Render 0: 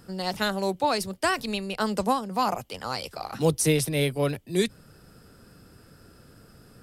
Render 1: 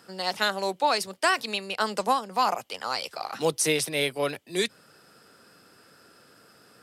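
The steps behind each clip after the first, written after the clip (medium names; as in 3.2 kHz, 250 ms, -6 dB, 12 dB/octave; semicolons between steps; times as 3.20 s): frequency weighting A; trim +2 dB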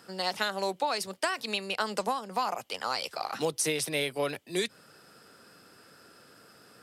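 compression 10:1, threshold -25 dBFS, peak gain reduction 9 dB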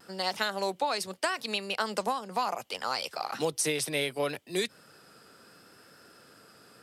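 vibrato 0.72 Hz 26 cents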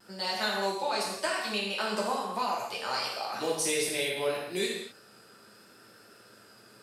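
gated-style reverb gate 280 ms falling, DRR -5.5 dB; trim -6 dB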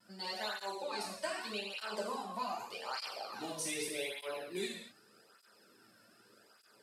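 cancelling through-zero flanger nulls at 0.83 Hz, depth 2.6 ms; trim -6 dB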